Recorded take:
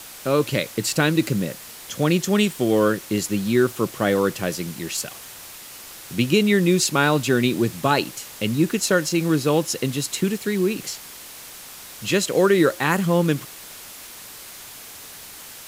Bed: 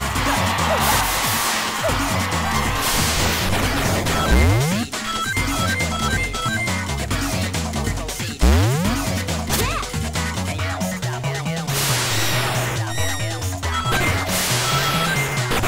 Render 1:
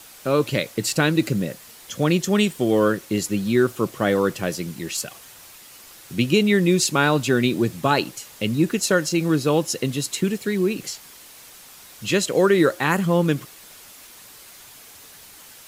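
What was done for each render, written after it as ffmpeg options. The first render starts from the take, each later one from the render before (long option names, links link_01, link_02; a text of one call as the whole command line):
ffmpeg -i in.wav -af "afftdn=noise_reduction=6:noise_floor=-40" out.wav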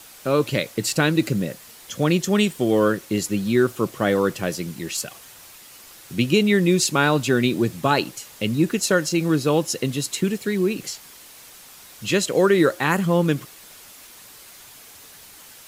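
ffmpeg -i in.wav -af anull out.wav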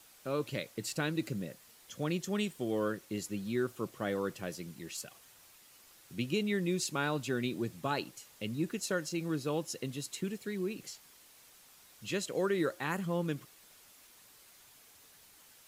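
ffmpeg -i in.wav -af "volume=-14.5dB" out.wav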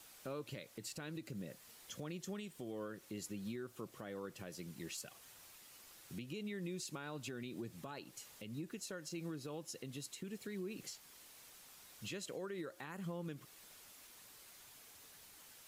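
ffmpeg -i in.wav -af "acompressor=threshold=-35dB:ratio=6,alimiter=level_in=11.5dB:limit=-24dB:level=0:latency=1:release=291,volume=-11.5dB" out.wav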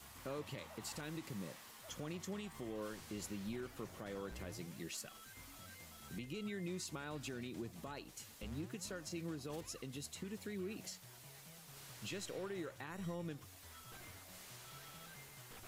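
ffmpeg -i in.wav -i bed.wav -filter_complex "[1:a]volume=-37dB[link_01];[0:a][link_01]amix=inputs=2:normalize=0" out.wav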